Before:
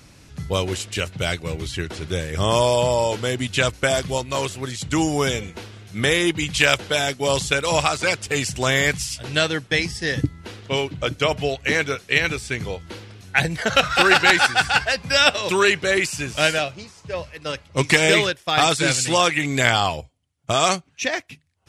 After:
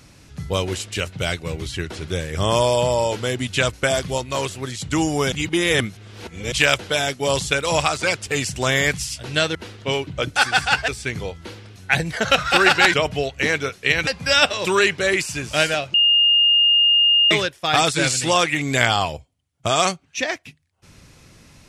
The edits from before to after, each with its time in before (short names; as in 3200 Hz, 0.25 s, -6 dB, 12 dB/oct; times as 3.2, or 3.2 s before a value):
5.32–6.52 reverse
9.55–10.39 cut
11.2–12.33 swap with 14.39–14.91
16.78–18.15 bleep 2830 Hz -12 dBFS